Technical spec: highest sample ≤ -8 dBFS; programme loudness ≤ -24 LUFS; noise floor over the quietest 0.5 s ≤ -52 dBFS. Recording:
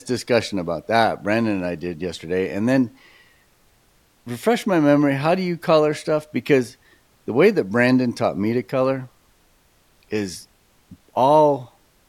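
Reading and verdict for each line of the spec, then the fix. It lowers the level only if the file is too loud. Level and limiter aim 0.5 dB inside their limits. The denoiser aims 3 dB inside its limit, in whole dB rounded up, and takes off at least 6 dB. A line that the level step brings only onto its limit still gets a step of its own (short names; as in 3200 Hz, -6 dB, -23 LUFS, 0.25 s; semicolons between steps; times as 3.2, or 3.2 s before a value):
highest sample -3.0 dBFS: fail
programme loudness -20.5 LUFS: fail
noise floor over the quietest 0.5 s -59 dBFS: OK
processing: gain -4 dB; limiter -8.5 dBFS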